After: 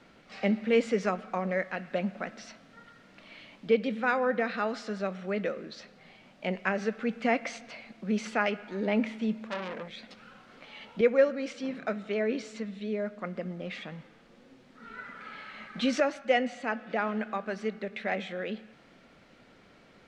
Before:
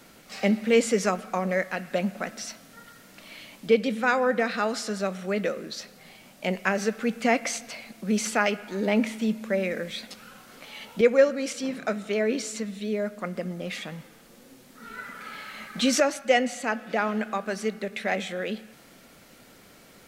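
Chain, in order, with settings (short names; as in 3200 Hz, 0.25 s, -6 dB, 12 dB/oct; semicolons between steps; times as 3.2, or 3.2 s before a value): LPF 3500 Hz 12 dB/oct; 9.47–10.18 core saturation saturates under 2200 Hz; gain -4 dB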